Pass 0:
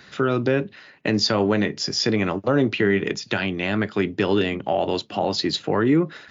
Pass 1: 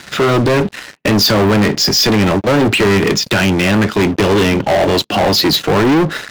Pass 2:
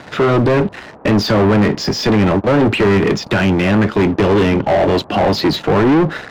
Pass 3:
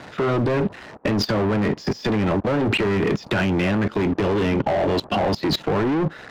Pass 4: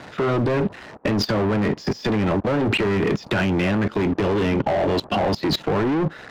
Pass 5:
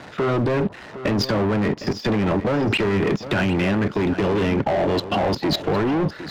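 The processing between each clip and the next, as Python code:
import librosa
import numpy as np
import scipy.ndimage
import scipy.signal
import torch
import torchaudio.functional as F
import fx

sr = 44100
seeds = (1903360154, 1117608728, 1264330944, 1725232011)

y1 = fx.leveller(x, sr, passes=5)
y2 = fx.high_shelf(y1, sr, hz=8800.0, db=-9.5)
y2 = fx.dmg_noise_band(y2, sr, seeds[0], low_hz=66.0, high_hz=1000.0, level_db=-39.0)
y2 = fx.high_shelf(y2, sr, hz=3000.0, db=-10.5)
y3 = fx.level_steps(y2, sr, step_db=20)
y4 = y3
y5 = y4 + 10.0 ** (-13.0 / 20.0) * np.pad(y4, (int(759 * sr / 1000.0), 0))[:len(y4)]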